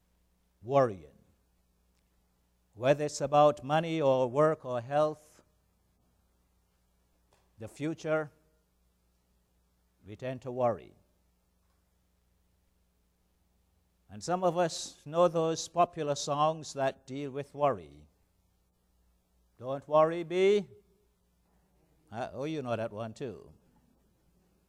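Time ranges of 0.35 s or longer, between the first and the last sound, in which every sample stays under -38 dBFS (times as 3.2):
0.96–2.8
5.13–7.62
8.25–10.09
10.78–14.15
17.84–19.62
20.62–22.13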